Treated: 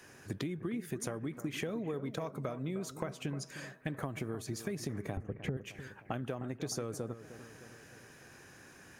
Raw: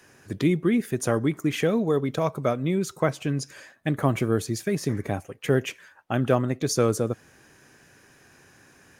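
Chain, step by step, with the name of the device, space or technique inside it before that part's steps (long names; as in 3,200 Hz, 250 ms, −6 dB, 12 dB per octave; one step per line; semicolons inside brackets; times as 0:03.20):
0:05.17–0:05.57: spectral tilt −4.5 dB per octave
serial compression, leveller first (downward compressor 2.5 to 1, threshold −23 dBFS, peak gain reduction 10 dB; downward compressor 6 to 1, threshold −34 dBFS, peak gain reduction 16 dB)
bucket-brigade delay 307 ms, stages 4,096, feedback 57%, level −12.5 dB
level −1 dB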